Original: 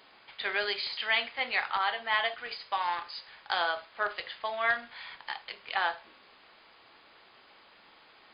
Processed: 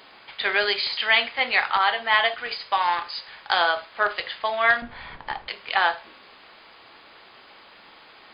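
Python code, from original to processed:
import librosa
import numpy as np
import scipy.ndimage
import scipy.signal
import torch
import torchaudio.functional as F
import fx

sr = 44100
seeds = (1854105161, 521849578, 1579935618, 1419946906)

y = fx.tilt_eq(x, sr, slope=-4.5, at=(4.82, 5.48))
y = F.gain(torch.from_numpy(y), 8.5).numpy()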